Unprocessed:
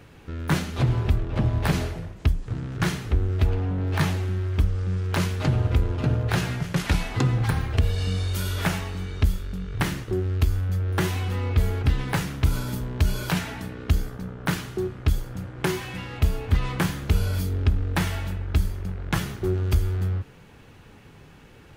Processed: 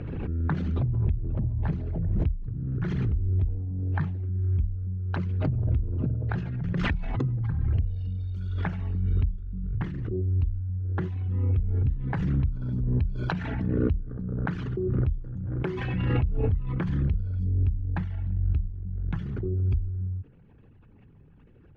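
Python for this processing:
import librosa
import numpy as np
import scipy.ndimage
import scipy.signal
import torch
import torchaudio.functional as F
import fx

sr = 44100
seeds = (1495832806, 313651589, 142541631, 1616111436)

y = fx.envelope_sharpen(x, sr, power=2.0)
y = scipy.signal.sosfilt(scipy.signal.butter(2, 4900.0, 'lowpass', fs=sr, output='sos'), y)
y = fx.pre_swell(y, sr, db_per_s=23.0)
y = y * 10.0 ** (-6.0 / 20.0)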